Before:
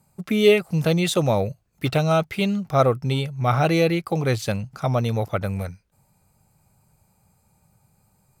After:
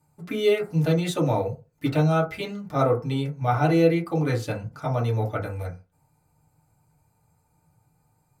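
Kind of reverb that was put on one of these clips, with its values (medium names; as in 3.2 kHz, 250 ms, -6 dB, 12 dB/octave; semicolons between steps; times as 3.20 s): FDN reverb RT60 0.3 s, low-frequency decay 1×, high-frequency decay 0.35×, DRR -4 dB; trim -9 dB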